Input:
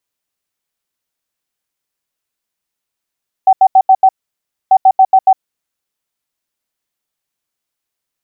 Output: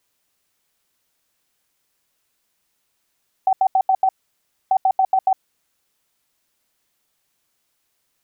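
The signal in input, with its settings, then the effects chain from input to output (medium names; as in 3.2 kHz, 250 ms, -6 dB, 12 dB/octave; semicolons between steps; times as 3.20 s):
beep pattern sine 763 Hz, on 0.06 s, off 0.08 s, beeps 5, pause 0.62 s, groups 2, -3 dBFS
compressor with a negative ratio -16 dBFS, ratio -1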